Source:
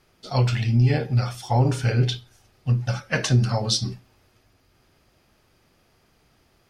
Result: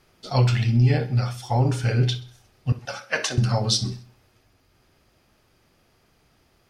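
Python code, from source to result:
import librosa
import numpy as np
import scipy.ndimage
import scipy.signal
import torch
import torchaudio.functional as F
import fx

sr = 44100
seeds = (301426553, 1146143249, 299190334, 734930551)

p1 = fx.highpass(x, sr, hz=450.0, slope=12, at=(2.72, 3.38))
p2 = fx.rider(p1, sr, range_db=10, speed_s=2.0)
y = p2 + fx.echo_feedback(p2, sr, ms=65, feedback_pct=46, wet_db=-17.5, dry=0)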